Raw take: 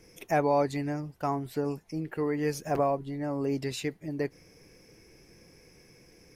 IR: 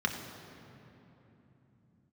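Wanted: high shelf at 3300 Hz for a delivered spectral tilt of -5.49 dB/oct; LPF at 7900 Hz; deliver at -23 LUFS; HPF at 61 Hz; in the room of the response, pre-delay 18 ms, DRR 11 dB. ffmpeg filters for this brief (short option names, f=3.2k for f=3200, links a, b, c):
-filter_complex "[0:a]highpass=61,lowpass=7.9k,highshelf=f=3.3k:g=6.5,asplit=2[a][b];[1:a]atrim=start_sample=2205,adelay=18[c];[b][c]afir=irnorm=-1:irlink=0,volume=-19dB[d];[a][d]amix=inputs=2:normalize=0,volume=7dB"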